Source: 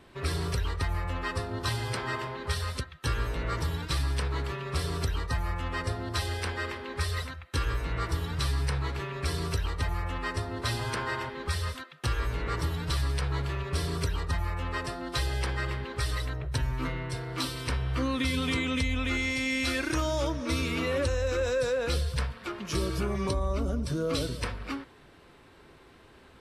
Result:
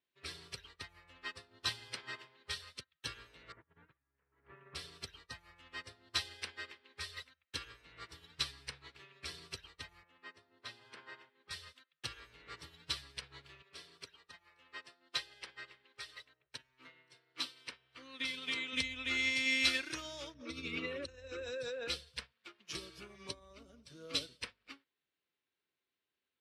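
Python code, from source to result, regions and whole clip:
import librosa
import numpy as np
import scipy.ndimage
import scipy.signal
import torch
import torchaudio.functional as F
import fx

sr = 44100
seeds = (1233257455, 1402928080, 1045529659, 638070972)

y = fx.chain(x, sr, fx.lowpass(hz=1800.0, slope=24),
    fx.over_compress(threshold_db=-33.0, ratio=-0.5), at=(3.52, 4.75))
y = fx.chain(y, sr, fx.bessel_highpass(hz=160.0, order=2),
    fx.high_shelf(hz=3100.0, db=-11.0), at=(10.03, 11.51))
y = fx.chain(y, sr, fx.highpass(hz=320.0, slope=6),
    fx.high_shelf(hz=4400.0, db=-5.0),
    fx.echo_single(ms=525, db=-23.0), at=(13.62, 18.73))
y = fx.chain(y, sr, fx.envelope_sharpen(power=1.5),
    fx.env_flatten(amount_pct=70), at=(20.34, 21.88))
y = fx.weighting(y, sr, curve='D')
y = fx.upward_expand(y, sr, threshold_db=-42.0, expansion=2.5)
y = F.gain(torch.from_numpy(y), -6.5).numpy()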